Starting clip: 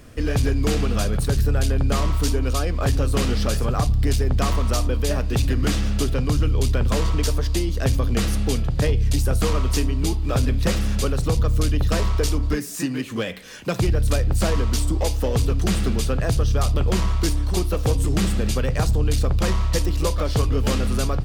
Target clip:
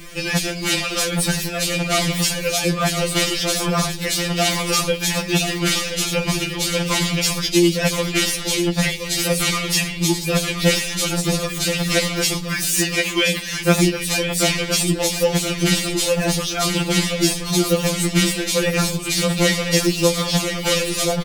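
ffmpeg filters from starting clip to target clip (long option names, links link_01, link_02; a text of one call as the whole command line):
ffmpeg -i in.wav -af "highshelf=frequency=1700:width_type=q:width=1.5:gain=6,areverse,acompressor=mode=upward:threshold=-30dB:ratio=2.5,areverse,aecho=1:1:1024:0.355,alimiter=level_in=13.5dB:limit=-1dB:release=50:level=0:latency=1,afftfilt=real='re*2.83*eq(mod(b,8),0)':imag='im*2.83*eq(mod(b,8),0)':win_size=2048:overlap=0.75,volume=-3.5dB" out.wav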